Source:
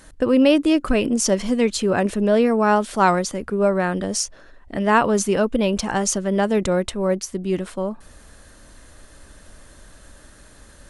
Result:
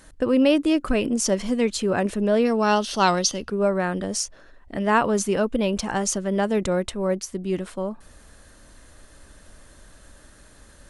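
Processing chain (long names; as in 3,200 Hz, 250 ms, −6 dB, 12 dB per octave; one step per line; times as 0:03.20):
gain on a spectral selection 0:02.45–0:03.50, 2,600–6,600 Hz +12 dB
level −3 dB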